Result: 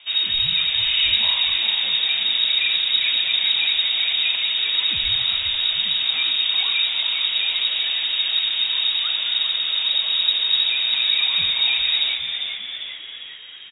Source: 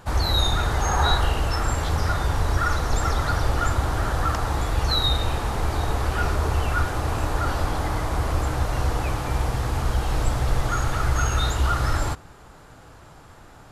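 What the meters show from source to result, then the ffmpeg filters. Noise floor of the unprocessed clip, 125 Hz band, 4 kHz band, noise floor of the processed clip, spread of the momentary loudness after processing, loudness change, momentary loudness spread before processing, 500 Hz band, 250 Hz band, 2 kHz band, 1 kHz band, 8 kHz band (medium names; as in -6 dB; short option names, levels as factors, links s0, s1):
-47 dBFS, under -20 dB, +16.0 dB, -36 dBFS, 4 LU, +6.5 dB, 5 LU, under -15 dB, under -15 dB, +5.0 dB, -15.0 dB, under -40 dB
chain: -filter_complex "[0:a]lowpass=f=3200:t=q:w=0.5098,lowpass=f=3200:t=q:w=0.6013,lowpass=f=3200:t=q:w=0.9,lowpass=f=3200:t=q:w=2.563,afreqshift=-3800,asplit=8[s0][s1][s2][s3][s4][s5][s6][s7];[s1]adelay=400,afreqshift=-120,volume=0.447[s8];[s2]adelay=800,afreqshift=-240,volume=0.254[s9];[s3]adelay=1200,afreqshift=-360,volume=0.145[s10];[s4]adelay=1600,afreqshift=-480,volume=0.0832[s11];[s5]adelay=2000,afreqshift=-600,volume=0.0473[s12];[s6]adelay=2400,afreqshift=-720,volume=0.0269[s13];[s7]adelay=2800,afreqshift=-840,volume=0.0153[s14];[s0][s8][s9][s10][s11][s12][s13][s14]amix=inputs=8:normalize=0"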